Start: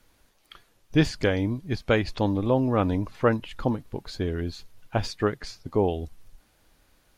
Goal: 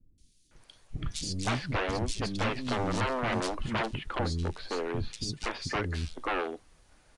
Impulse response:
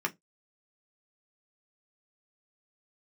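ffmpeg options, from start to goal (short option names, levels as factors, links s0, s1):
-filter_complex "[0:a]aeval=exprs='0.0531*(abs(mod(val(0)/0.0531+3,4)-2)-1)':c=same,acrossover=split=280|3600[s0][s1][s2];[s2]adelay=180[s3];[s1]adelay=510[s4];[s0][s4][s3]amix=inputs=3:normalize=0,asplit=2[s5][s6];[1:a]atrim=start_sample=2205[s7];[s6][s7]afir=irnorm=-1:irlink=0,volume=0.0794[s8];[s5][s8]amix=inputs=2:normalize=0,aresample=22050,aresample=44100,volume=1.26"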